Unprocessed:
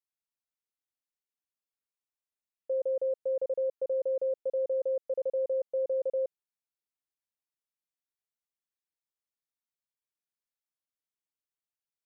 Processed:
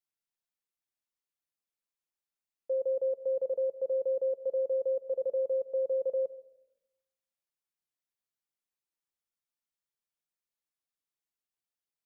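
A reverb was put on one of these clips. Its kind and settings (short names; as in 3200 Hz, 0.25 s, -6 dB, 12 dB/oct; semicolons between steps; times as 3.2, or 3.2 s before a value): shoebox room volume 3300 m³, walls furnished, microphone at 0.81 m; gain -1.5 dB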